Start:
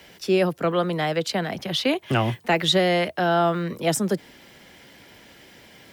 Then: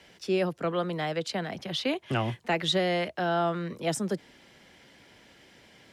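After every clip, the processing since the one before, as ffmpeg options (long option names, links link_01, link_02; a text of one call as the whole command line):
ffmpeg -i in.wav -af "lowpass=9800,volume=-6.5dB" out.wav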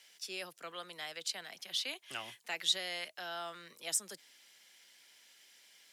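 ffmpeg -i in.wav -af "aderivative,volume=3dB" out.wav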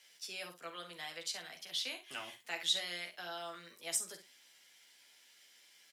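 ffmpeg -i in.wav -filter_complex "[0:a]asplit=2[link_01][link_02];[link_02]adelay=45,volume=-11dB[link_03];[link_01][link_03]amix=inputs=2:normalize=0,aecho=1:1:12|68:0.668|0.266,volume=-3.5dB" out.wav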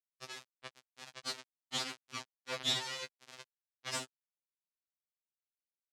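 ffmpeg -i in.wav -af "acrusher=bits=3:dc=4:mix=0:aa=0.000001,highpass=120,lowpass=5100,afftfilt=real='re*2.45*eq(mod(b,6),0)':imag='im*2.45*eq(mod(b,6),0)':win_size=2048:overlap=0.75,volume=9.5dB" out.wav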